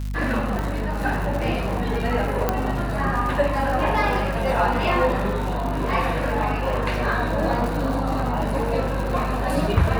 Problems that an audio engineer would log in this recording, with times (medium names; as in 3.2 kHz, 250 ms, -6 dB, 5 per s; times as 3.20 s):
crackle 180 per s -28 dBFS
hum 50 Hz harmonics 5 -27 dBFS
0.59 s: pop
2.49 s: pop -7 dBFS